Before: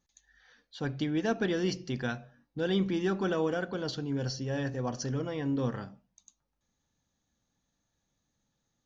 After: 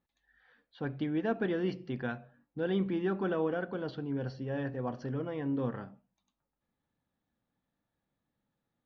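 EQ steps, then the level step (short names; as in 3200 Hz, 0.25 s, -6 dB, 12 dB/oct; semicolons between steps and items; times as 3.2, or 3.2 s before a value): air absorption 420 m; low shelf 97 Hz -10.5 dB; 0.0 dB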